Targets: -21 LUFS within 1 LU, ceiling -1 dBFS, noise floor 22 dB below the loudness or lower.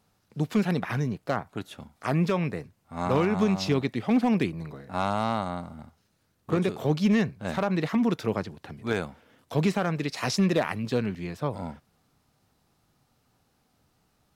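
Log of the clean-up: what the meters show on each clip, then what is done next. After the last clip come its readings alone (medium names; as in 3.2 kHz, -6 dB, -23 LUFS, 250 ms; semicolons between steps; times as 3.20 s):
clipped samples 0.3%; clipping level -15.0 dBFS; loudness -27.5 LUFS; peak level -15.0 dBFS; loudness target -21.0 LUFS
-> clip repair -15 dBFS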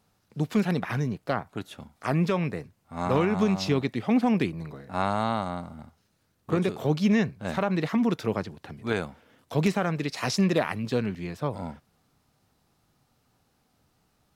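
clipped samples 0.0%; loudness -27.5 LUFS; peak level -8.0 dBFS; loudness target -21.0 LUFS
-> trim +6.5 dB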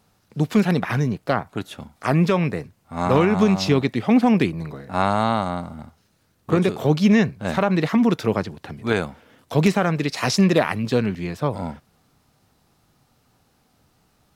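loudness -21.0 LUFS; peak level -1.5 dBFS; noise floor -64 dBFS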